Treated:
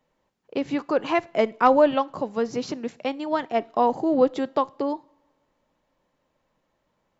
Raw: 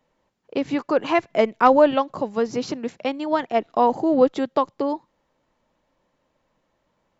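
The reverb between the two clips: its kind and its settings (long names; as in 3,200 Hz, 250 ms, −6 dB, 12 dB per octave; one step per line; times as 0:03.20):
coupled-rooms reverb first 0.36 s, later 1.6 s, from −18 dB, DRR 18.5 dB
level −2.5 dB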